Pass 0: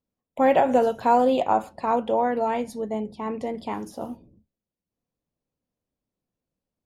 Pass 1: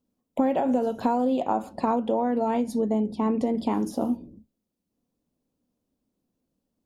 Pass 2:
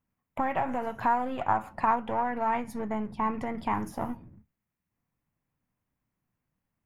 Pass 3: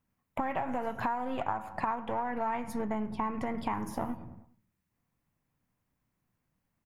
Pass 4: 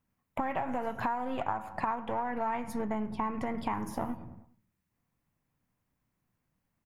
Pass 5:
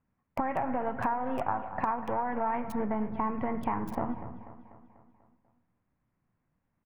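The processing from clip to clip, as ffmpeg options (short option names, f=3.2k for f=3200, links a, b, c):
-af "equalizer=f=125:t=o:w=1:g=-3,equalizer=f=250:t=o:w=1:g=9,equalizer=f=2k:t=o:w=1:g=-5,acompressor=threshold=-25dB:ratio=10,volume=4.5dB"
-af "aeval=exprs='if(lt(val(0),0),0.708*val(0),val(0))':c=same,equalizer=f=125:t=o:w=1:g=8,equalizer=f=250:t=o:w=1:g=-10,equalizer=f=500:t=o:w=1:g=-9,equalizer=f=1k:t=o:w=1:g=5,equalizer=f=2k:t=o:w=1:g=11,equalizer=f=4k:t=o:w=1:g=-10,equalizer=f=8k:t=o:w=1:g=-5"
-filter_complex "[0:a]asplit=2[a][b];[b]adelay=102,lowpass=f=2.3k:p=1,volume=-18dB,asplit=2[c][d];[d]adelay=102,lowpass=f=2.3k:p=1,volume=0.51,asplit=2[e][f];[f]adelay=102,lowpass=f=2.3k:p=1,volume=0.51,asplit=2[g][h];[h]adelay=102,lowpass=f=2.3k:p=1,volume=0.51[i];[a][c][e][g][i]amix=inputs=5:normalize=0,acompressor=threshold=-32dB:ratio=5,volume=2.5dB"
-af anull
-filter_complex "[0:a]acrossover=split=2500[a][b];[a]aecho=1:1:245|490|735|980|1225|1470:0.2|0.11|0.0604|0.0332|0.0183|0.01[c];[b]acrusher=bits=4:dc=4:mix=0:aa=0.000001[d];[c][d]amix=inputs=2:normalize=0,volume=2dB"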